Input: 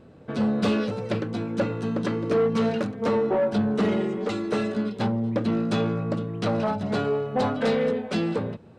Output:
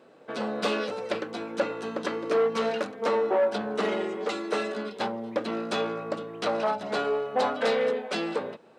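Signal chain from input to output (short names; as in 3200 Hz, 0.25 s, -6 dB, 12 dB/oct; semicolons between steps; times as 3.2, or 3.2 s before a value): HPF 450 Hz 12 dB/oct; gain +1.5 dB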